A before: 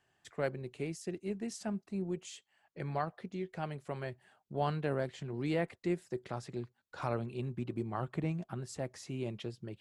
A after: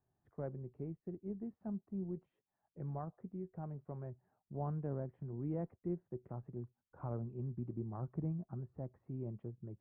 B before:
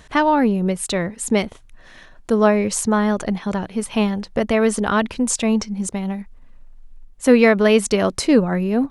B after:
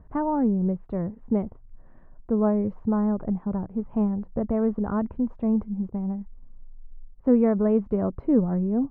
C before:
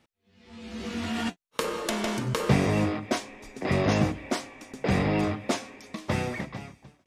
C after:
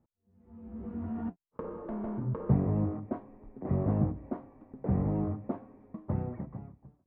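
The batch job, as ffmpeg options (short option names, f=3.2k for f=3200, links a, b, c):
-af "lowpass=f=1k:w=0.5412,lowpass=f=1k:w=1.3066,equalizer=f=680:t=o:w=2.8:g=-10"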